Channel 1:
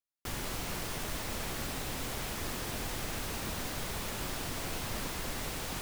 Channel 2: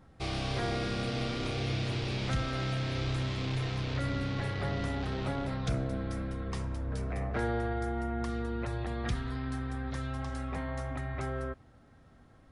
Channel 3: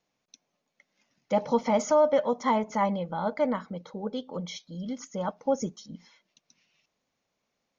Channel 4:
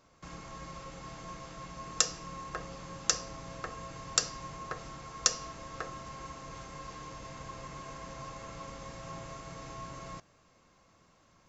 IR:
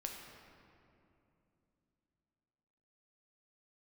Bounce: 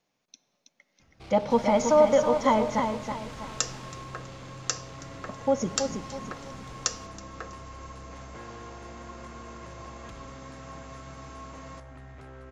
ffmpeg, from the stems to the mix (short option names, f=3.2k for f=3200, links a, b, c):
-filter_complex "[0:a]lowpass=6.1k,adelay=1250,volume=-1.5dB,afade=t=out:st=3.8:d=0.46:silence=0.281838,afade=t=in:st=5.46:d=0.3:silence=0.473151[a];[1:a]asoftclip=type=tanh:threshold=-37dB,highshelf=f=6.1k:g=-8,adelay=1000,volume=-5.5dB[b];[2:a]volume=0dB,asplit=3[c][d][e];[c]atrim=end=2.8,asetpts=PTS-STARTPTS,afade=t=out:st=2.796:d=0.004:c=hsin[f];[d]atrim=start=2.8:end=5.29,asetpts=PTS-STARTPTS,volume=0[g];[e]atrim=start=5.29,asetpts=PTS-STARTPTS,afade=t=in:d=0.004:c=hsin[h];[f][g][h]concat=n=3:v=0:a=1,asplit=3[i][j][k];[j]volume=-9dB[l];[k]volume=-4.5dB[m];[3:a]highpass=170,equalizer=f=5.1k:w=1.5:g=-2,adelay=1600,volume=-0.5dB,asplit=2[n][o];[o]volume=-21dB[p];[4:a]atrim=start_sample=2205[q];[l][q]afir=irnorm=-1:irlink=0[r];[m][p]amix=inputs=2:normalize=0,aecho=0:1:324|648|972|1296|1620:1|0.35|0.122|0.0429|0.015[s];[a][b][i][n][r][s]amix=inputs=6:normalize=0"